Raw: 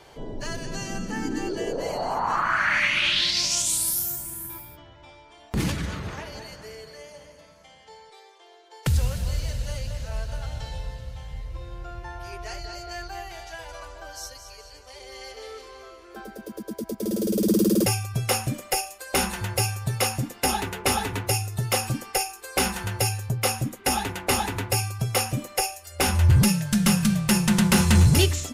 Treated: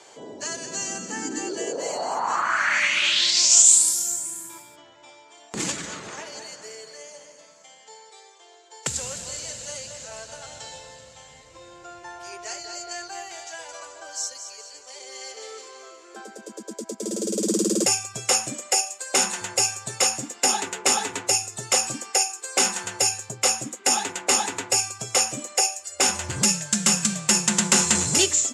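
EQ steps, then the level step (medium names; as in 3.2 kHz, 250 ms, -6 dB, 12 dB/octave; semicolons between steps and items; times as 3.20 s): high-pass 290 Hz 12 dB/octave; resonant low-pass 7.4 kHz, resonance Q 6.3; 0.0 dB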